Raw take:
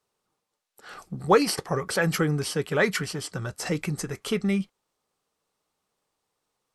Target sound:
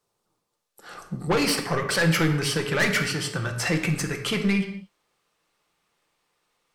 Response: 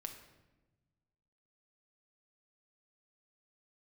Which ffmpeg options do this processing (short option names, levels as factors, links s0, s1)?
-filter_complex "[0:a]asetnsamples=n=441:p=0,asendcmd='1.37 equalizer g 8',equalizer=f=2200:t=o:w=1.7:g=-3.5,asoftclip=type=tanh:threshold=0.0841[s0];[1:a]atrim=start_sample=2205,afade=t=out:st=0.29:d=0.01,atrim=end_sample=13230[s1];[s0][s1]afir=irnorm=-1:irlink=0,volume=2.24"